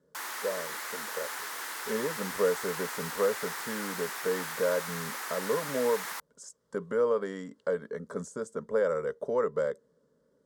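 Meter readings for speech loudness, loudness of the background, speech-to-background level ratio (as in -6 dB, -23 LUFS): -32.5 LUFS, -36.0 LUFS, 3.5 dB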